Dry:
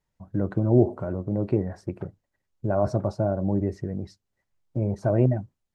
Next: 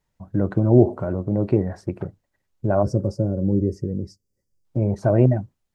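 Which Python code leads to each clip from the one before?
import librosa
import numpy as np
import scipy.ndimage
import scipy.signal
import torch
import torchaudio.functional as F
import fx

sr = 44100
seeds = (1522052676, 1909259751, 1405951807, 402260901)

y = fx.spec_box(x, sr, start_s=2.83, length_s=1.82, low_hz=580.0, high_hz=4500.0, gain_db=-17)
y = y * 10.0 ** (4.5 / 20.0)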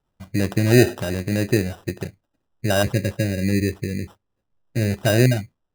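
y = fx.sample_hold(x, sr, seeds[0], rate_hz=2200.0, jitter_pct=0)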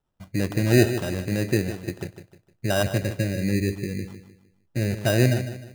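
y = fx.echo_feedback(x, sr, ms=153, feedback_pct=36, wet_db=-11)
y = y * 10.0 ** (-3.5 / 20.0)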